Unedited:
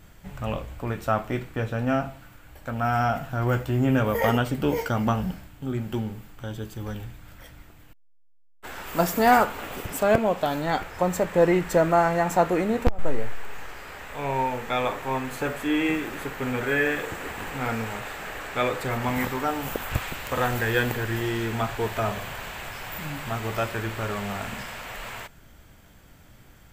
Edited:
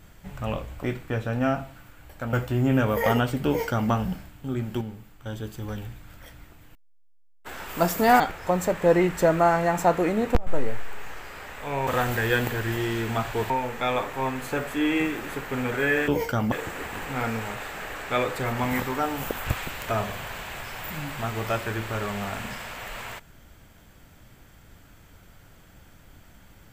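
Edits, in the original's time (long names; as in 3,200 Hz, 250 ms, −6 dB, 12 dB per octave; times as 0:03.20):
0:00.83–0:01.29: remove
0:02.79–0:03.51: remove
0:04.65–0:05.09: duplicate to 0:16.97
0:05.99–0:06.44: clip gain −5 dB
0:09.38–0:10.72: remove
0:20.31–0:21.94: move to 0:14.39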